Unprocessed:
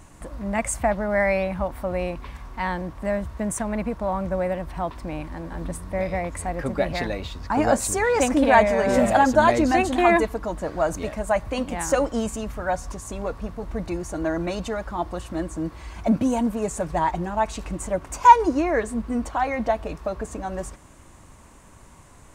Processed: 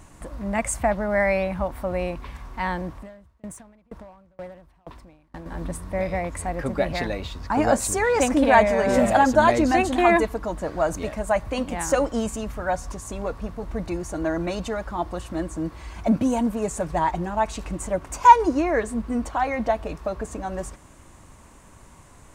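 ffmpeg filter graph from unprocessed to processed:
-filter_complex "[0:a]asettb=1/sr,asplit=3[s0][s1][s2];[s0]atrim=end=2.964[s3];[s1]atrim=start=2.96:end=5.46,asetpts=PTS-STARTPTS,afade=t=in:d=0.004:c=qsin,afade=t=out:st=2.496:d=0.004:c=qsin,acompressor=threshold=0.0355:ratio=8:attack=3.2:release=140:knee=1:detection=peak,volume=28.2,asoftclip=hard,volume=0.0355,aeval=exprs='val(0)*pow(10,-32*if(lt(mod(2.1*n/s,1),2*abs(2.1)/1000),1-mod(2.1*n/s,1)/(2*abs(2.1)/1000),(mod(2.1*n/s,1)-2*abs(2.1)/1000)/(1-2*abs(2.1)/1000))/20)':c=same[s4];[s2]atrim=start=5.456[s5];[s3][s4]acrossfade=d=0.004:c1=hsin:c2=qsin[s6];[s6][s5]acrossfade=d=0.004:c1=qsin:c2=hsin"

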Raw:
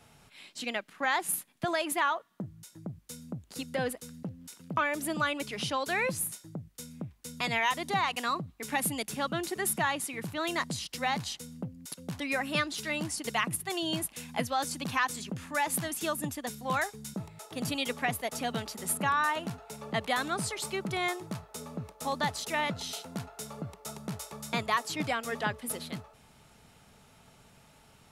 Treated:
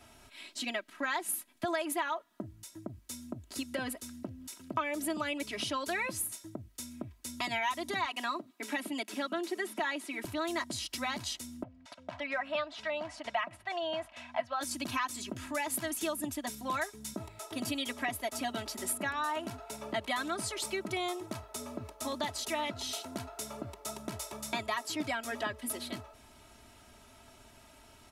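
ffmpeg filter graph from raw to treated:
-filter_complex "[0:a]asettb=1/sr,asplit=3[s0][s1][s2];[s0]atrim=end=8.064[s3];[s1]atrim=start=8.06:end=10.25,asetpts=PTS-STARTPTS,afade=t=in:d=0.004:c=qsin,afade=t=out:st=2.186:d=0.004:c=qsin,highpass=f=220:w=0.5412,highpass=f=220:w=1.3066,acrossover=split=4400[s4][s5];[s5]acompressor=threshold=0.00447:ratio=4:attack=1:release=60[s6];[s4][s6]amix=inputs=2:normalize=0[s7];[s2]atrim=start=10.246[s8];[s3][s7]acrossfade=d=0.004:c1=hsin:c2=qsin[s9];[s9][s8]acrossfade=d=0.004:c1=qsin:c2=hsin,asettb=1/sr,asplit=3[s10][s11][s12];[s10]atrim=end=11.634[s13];[s11]atrim=start=11.63:end=14.61,asetpts=PTS-STARTPTS,afade=t=in:d=0.004:c=qsin,afade=t=out:st=2.976:d=0.004:c=qsin,lowpass=2700,lowshelf=f=500:t=q:w=3:g=-8[s14];[s12]atrim=start=14.606[s15];[s13][s14]acrossfade=d=0.004:c1=hsin:c2=qsin[s16];[s16][s15]acrossfade=d=0.004:c1=qsin:c2=hsin,aecho=1:1:3.1:0.84,acompressor=threshold=0.0178:ratio=2"

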